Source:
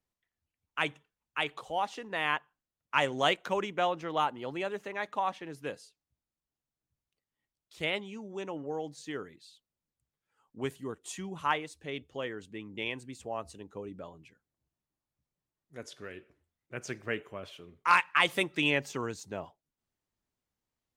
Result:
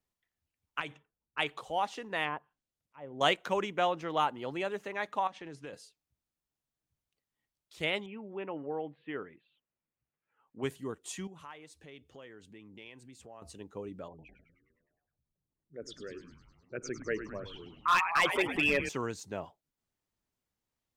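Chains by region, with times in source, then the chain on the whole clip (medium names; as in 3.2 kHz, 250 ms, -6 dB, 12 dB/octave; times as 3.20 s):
0.80–1.39 s: level-controlled noise filter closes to 390 Hz, open at -29.5 dBFS + compression, threshold -34 dBFS
2.24–3.21 s: low-pass that closes with the level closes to 1.1 kHz, closed at -28.5 dBFS + peaking EQ 1.4 kHz -5 dB 1.3 oct + slow attack 520 ms
5.27–5.73 s: low-pass 8.7 kHz 24 dB/octave + compression 5:1, threshold -40 dBFS
8.06–10.63 s: steep low-pass 2.9 kHz 48 dB/octave + bass shelf 110 Hz -9 dB
11.27–13.42 s: high-pass 41 Hz + compression 2.5:1, threshold -53 dBFS
14.08–18.89 s: resonances exaggerated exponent 2 + frequency-shifting echo 103 ms, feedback 65%, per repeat -110 Hz, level -10.5 dB + overload inside the chain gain 20 dB
whole clip: none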